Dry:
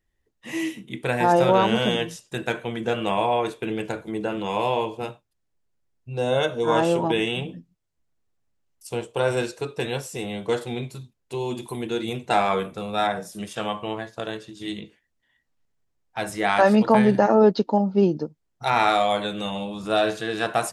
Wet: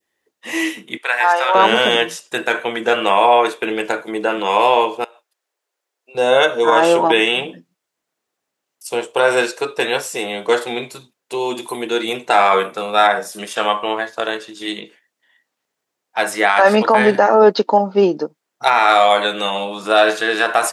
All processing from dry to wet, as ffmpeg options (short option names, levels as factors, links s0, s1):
-filter_complex "[0:a]asettb=1/sr,asplit=3[s0][s1][s2];[s0]atrim=end=0.974[s3];[s1]atrim=start=0.97:end=1.55,asetpts=PTS-STARTPTS,afade=t=in:d=0.004:c=qsin,afade=t=out:st=0.576:d=0.004:c=qsin,highpass=1100,highshelf=f=5600:g=-9.5[s4];[s2]atrim=start=1.546[s5];[s3][s4]acrossfade=d=0.004:c1=hsin:c2=qsin[s6];[s6][s5]acrossfade=d=0.004:c1=qsin:c2=hsin,asettb=1/sr,asplit=3[s7][s8][s9];[s7]atrim=end=5.044[s10];[s8]atrim=start=5.04:end=6.15,asetpts=PTS-STARTPTS,afade=t=in:d=0.004:c=qsin,afade=t=out:st=1.106:d=0.004:c=qsin,highpass=f=380:w=0.5412,highpass=f=380:w=1.3066,acompressor=threshold=0.00447:ratio=20:attack=3.2:release=140:knee=1:detection=peak[s11];[s9]atrim=start=6.146[s12];[s10][s11]acrossfade=d=0.004:c1=hsin:c2=qsin[s13];[s13][s12]acrossfade=d=0.004:c1=qsin:c2=hsin,highpass=380,adynamicequalizer=threshold=0.0141:dfrequency=1500:dqfactor=0.91:tfrequency=1500:tqfactor=0.91:attack=5:release=100:ratio=0.375:range=2.5:mode=boostabove:tftype=bell,alimiter=level_in=3.35:limit=0.891:release=50:level=0:latency=1,volume=0.891"